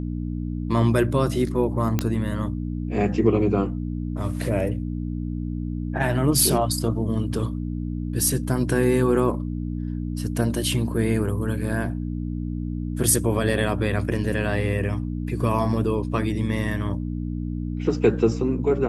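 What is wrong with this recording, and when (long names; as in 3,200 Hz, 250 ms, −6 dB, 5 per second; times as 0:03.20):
mains hum 60 Hz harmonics 5 −28 dBFS
0:01.99: click −8 dBFS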